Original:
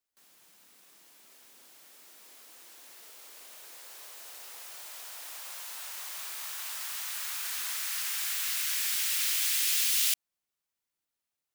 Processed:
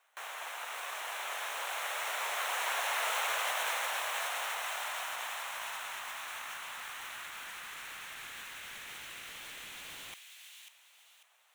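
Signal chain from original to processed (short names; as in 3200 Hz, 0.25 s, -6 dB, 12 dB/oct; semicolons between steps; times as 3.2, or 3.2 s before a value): half-waves squared off; HPF 620 Hz 24 dB/oct; bell 4800 Hz -15 dB 0.35 oct; overdrive pedal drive 18 dB, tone 1100 Hz, clips at -13 dBFS; negative-ratio compressor -47 dBFS, ratio -1; on a send: thin delay 0.544 s, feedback 34%, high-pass 2600 Hz, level -3.5 dB; on the sum: gain +6 dB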